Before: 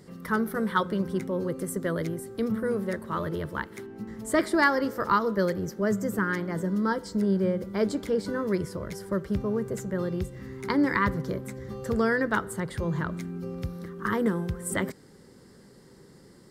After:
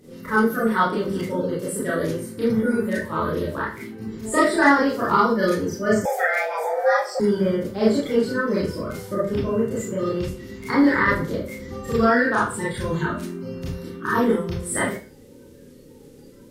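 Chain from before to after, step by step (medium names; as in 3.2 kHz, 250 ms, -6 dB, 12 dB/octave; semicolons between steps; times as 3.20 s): coarse spectral quantiser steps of 30 dB; Schroeder reverb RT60 0.36 s, combs from 25 ms, DRR -7.5 dB; 6.05–7.20 s: frequency shift +310 Hz; trim -1 dB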